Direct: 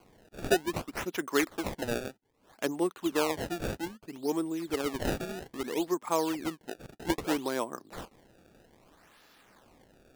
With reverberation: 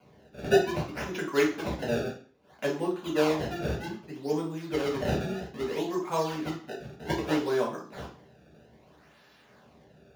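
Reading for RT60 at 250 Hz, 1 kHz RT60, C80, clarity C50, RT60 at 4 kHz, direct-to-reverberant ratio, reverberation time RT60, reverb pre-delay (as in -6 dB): 0.45 s, 0.45 s, 13.0 dB, 7.5 dB, 0.40 s, -3.5 dB, 0.45 s, 3 ms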